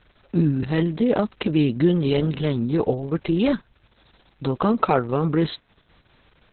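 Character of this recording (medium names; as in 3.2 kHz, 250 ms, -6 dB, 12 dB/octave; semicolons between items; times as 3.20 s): a quantiser's noise floor 10-bit, dither none; Opus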